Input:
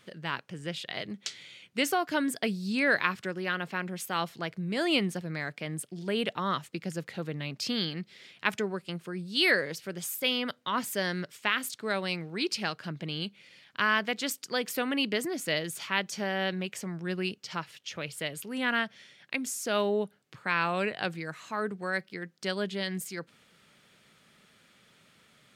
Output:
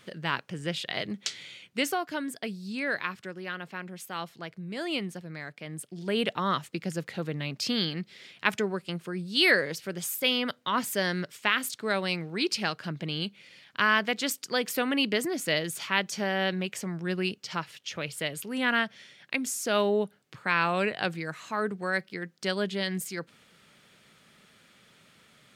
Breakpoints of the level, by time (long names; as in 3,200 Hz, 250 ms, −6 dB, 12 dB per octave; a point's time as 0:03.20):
0:01.49 +4 dB
0:02.21 −5 dB
0:05.59 −5 dB
0:06.19 +2.5 dB